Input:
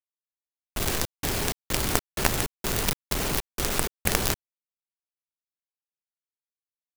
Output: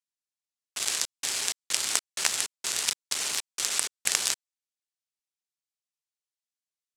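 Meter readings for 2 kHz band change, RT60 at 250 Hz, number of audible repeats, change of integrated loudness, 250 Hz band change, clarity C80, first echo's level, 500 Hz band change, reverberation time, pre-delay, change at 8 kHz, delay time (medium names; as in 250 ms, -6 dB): -2.5 dB, no reverb, no echo, -0.5 dB, -19.5 dB, no reverb, no echo, -14.0 dB, no reverb, no reverb, +4.0 dB, no echo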